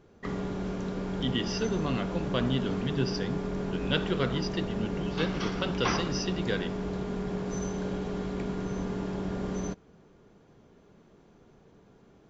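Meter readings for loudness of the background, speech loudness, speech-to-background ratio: -34.0 LUFS, -32.5 LUFS, 1.5 dB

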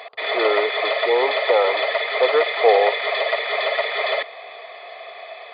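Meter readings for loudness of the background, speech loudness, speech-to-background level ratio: -21.5 LUFS, -21.0 LUFS, 0.5 dB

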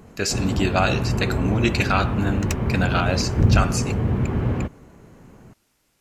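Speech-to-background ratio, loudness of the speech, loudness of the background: -1.0 dB, -24.5 LUFS, -23.5 LUFS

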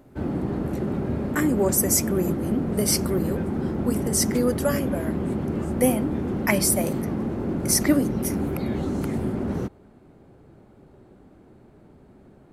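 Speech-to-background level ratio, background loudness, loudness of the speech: 3.0 dB, -27.5 LUFS, -24.5 LUFS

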